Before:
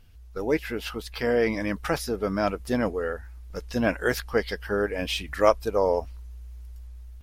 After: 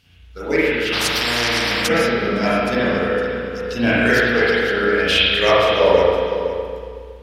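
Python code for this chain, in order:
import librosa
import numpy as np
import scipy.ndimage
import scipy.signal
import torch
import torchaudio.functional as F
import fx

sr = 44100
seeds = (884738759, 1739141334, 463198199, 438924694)

p1 = fx.weighting(x, sr, curve='D')
p2 = fx.cheby_harmonics(p1, sr, harmonics=(2, 3, 5, 7), levels_db=(-19, -24, -21, -37), full_scale_db=-3.0)
p3 = scipy.signal.sosfilt(scipy.signal.butter(2, 47.0, 'highpass', fs=sr, output='sos'), p2)
p4 = fx.low_shelf(p3, sr, hz=120.0, db=11.0)
p5 = fx.level_steps(p4, sr, step_db=21)
p6 = p4 + F.gain(torch.from_numpy(p5), -1.0).numpy()
p7 = fx.echo_feedback(p6, sr, ms=511, feedback_pct=15, wet_db=-11.5)
p8 = fx.rev_spring(p7, sr, rt60_s=1.9, pass_ms=(34, 46), chirp_ms=70, drr_db=-9.5)
p9 = fx.spectral_comp(p8, sr, ratio=4.0, at=(0.92, 1.87), fade=0.02)
y = F.gain(torch.from_numpy(p9), -6.5).numpy()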